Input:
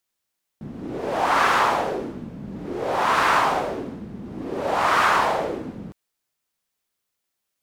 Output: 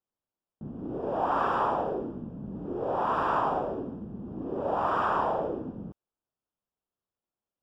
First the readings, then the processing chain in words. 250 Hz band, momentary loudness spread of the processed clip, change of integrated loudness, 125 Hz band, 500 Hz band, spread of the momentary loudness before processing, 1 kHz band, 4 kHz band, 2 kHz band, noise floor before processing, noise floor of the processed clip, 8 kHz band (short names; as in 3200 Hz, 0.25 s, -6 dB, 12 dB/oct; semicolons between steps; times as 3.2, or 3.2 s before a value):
-4.0 dB, 13 LU, -8.5 dB, -3.5 dB, -4.5 dB, 18 LU, -7.0 dB, -18.5 dB, -15.0 dB, -80 dBFS, under -85 dBFS, under -25 dB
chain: running mean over 21 samples; gain -3.5 dB